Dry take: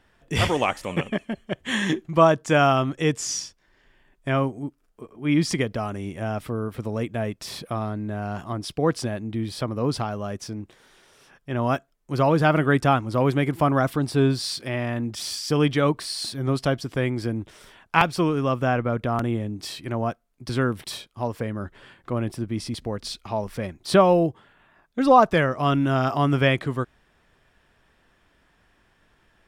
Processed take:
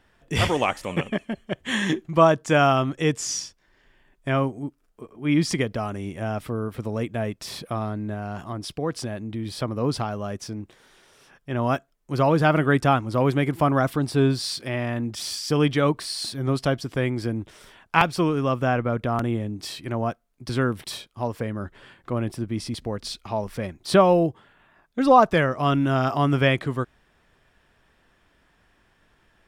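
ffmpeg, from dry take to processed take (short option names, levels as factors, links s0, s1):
-filter_complex "[0:a]asettb=1/sr,asplit=3[s0][s1][s2];[s0]atrim=end=8.144[s3];[s1]atrim=start=8.14:end=9.46,asetpts=PTS-STARTPTS,afade=t=in:d=0.004:c=qsin,afade=t=out:st=1.316:d=0.004:c=qsin,acompressor=threshold=0.0282:ratio=1.5:attack=3.2:release=140:knee=1:detection=peak[s4];[s2]atrim=start=9.456[s5];[s3][s4]acrossfade=d=0.004:c1=hsin:c2=qsin[s6];[s6][s5]acrossfade=d=0.004:c1=qsin:c2=hsin"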